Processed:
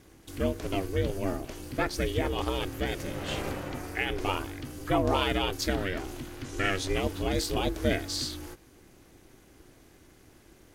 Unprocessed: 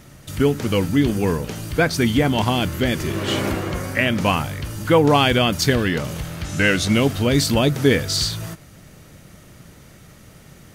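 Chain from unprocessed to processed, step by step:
ring modulation 190 Hz
level −8 dB

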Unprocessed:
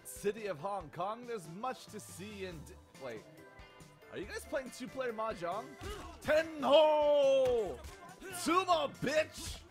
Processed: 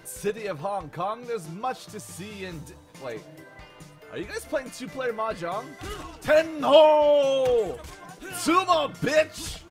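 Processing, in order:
comb filter 6.5 ms, depth 36%
level +8.5 dB

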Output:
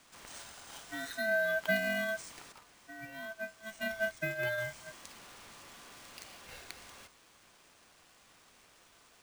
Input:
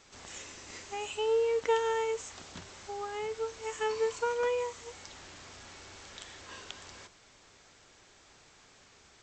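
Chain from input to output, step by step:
bad sample-rate conversion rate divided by 3×, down none, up hold
ring modulation 1,100 Hz
0:02.52–0:04.58: expander for the loud parts 1.5 to 1, over −45 dBFS

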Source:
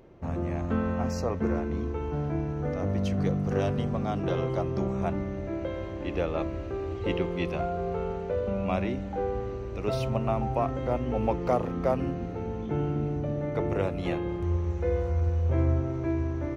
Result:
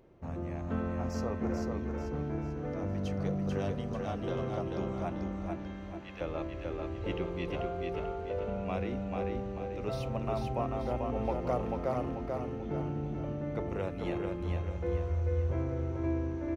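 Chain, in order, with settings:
0:05.55–0:06.21: high-pass filter 1,200 Hz 12 dB per octave
repeating echo 440 ms, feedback 42%, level −3.5 dB
level −7 dB

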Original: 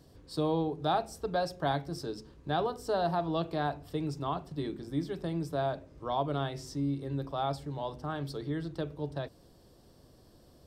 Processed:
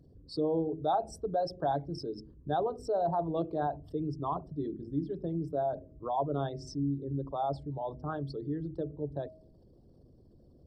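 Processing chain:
spectral envelope exaggerated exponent 2
hum removal 317.4 Hz, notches 2

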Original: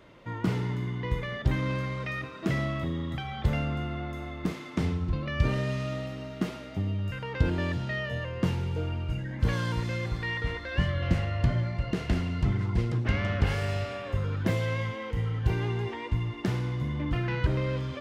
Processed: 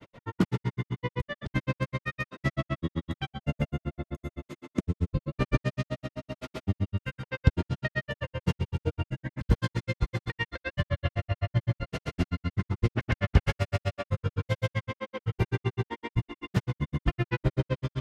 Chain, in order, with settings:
granular cloud 66 ms, grains 7.8 per second, pitch spread up and down by 0 semitones
gain on a spectral selection 0:03.26–0:05.33, 660–6,200 Hz −6 dB
level +6 dB

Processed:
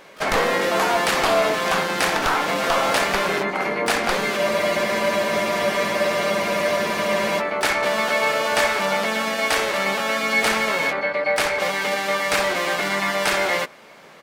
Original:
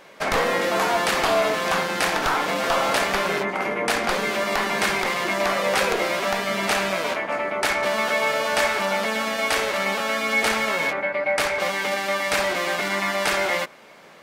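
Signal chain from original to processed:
pitch-shifted copies added −4 semitones −15 dB, +12 semitones −18 dB
frozen spectrum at 0:04.38, 3.01 s
level +1.5 dB

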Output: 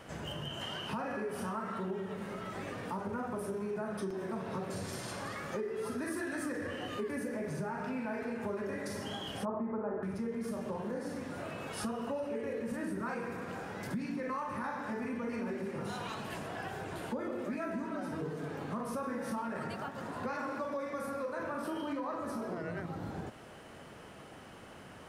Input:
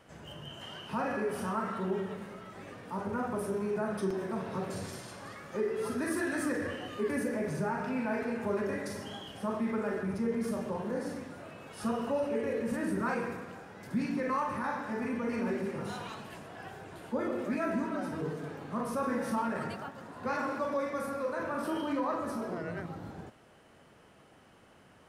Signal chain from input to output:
downward compressor 4 to 1, threshold −45 dBFS, peak gain reduction 15 dB
0:09.45–0:10.03: low-pass with resonance 930 Hz, resonance Q 1.6
level +8 dB

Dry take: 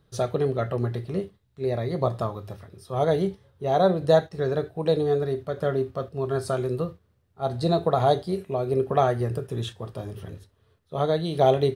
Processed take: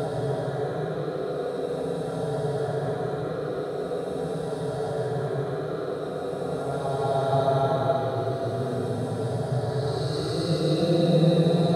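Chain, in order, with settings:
echo that builds up and dies away 137 ms, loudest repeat 8, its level −14.5 dB
extreme stretch with random phases 17×, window 0.10 s, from 0:07.01

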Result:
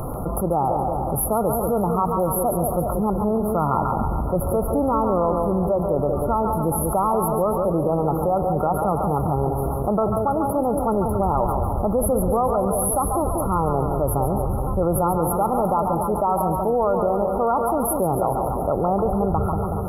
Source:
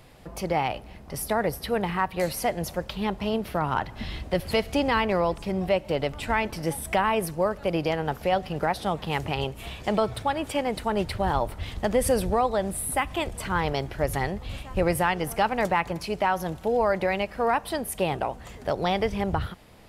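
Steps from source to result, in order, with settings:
brick-wall band-stop 1,400–10,000 Hz
echo with a time of its own for lows and highs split 750 Hz, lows 187 ms, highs 140 ms, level −7.5 dB
envelope flattener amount 70%

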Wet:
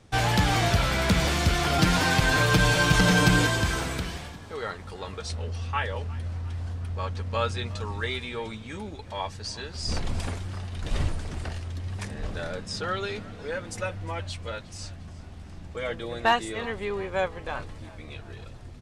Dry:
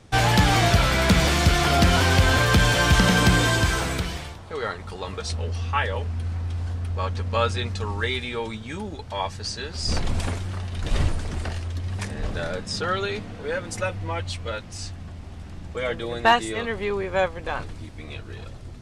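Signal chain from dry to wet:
0:01.78–0:03.47: comb filter 6.5 ms, depth 86%
echo with shifted repeats 356 ms, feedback 52%, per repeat +38 Hz, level −20.5 dB
level −4.5 dB

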